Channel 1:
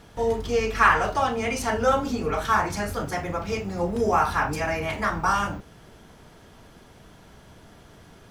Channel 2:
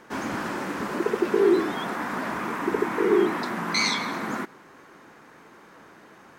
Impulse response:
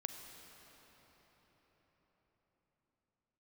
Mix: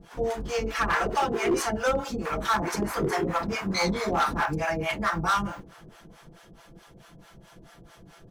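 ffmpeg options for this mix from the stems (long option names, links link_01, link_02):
-filter_complex "[0:a]aecho=1:1:5.9:0.61,volume=1.5dB[link_01];[1:a]dynaudnorm=framelen=110:gausssize=17:maxgain=16dB,volume=-11dB,asplit=3[link_02][link_03][link_04];[link_02]atrim=end=1.66,asetpts=PTS-STARTPTS,afade=type=out:start_time=1.656:duration=0.004:curve=hsin[link_05];[link_03]atrim=start=1.66:end=2.25,asetpts=PTS-STARTPTS,volume=0[link_06];[link_04]atrim=start=2.25,asetpts=PTS-STARTPTS,afade=type=in:duration=0.004:curve=hsin[link_07];[link_05][link_06][link_07]concat=n=3:v=0:a=1[link_08];[link_01][link_08]amix=inputs=2:normalize=0,acrossover=split=570[link_09][link_10];[link_09]aeval=exprs='val(0)*(1-1/2+1/2*cos(2*PI*4.6*n/s))':channel_layout=same[link_11];[link_10]aeval=exprs='val(0)*(1-1/2-1/2*cos(2*PI*4.6*n/s))':channel_layout=same[link_12];[link_11][link_12]amix=inputs=2:normalize=0,asoftclip=type=hard:threshold=-19dB"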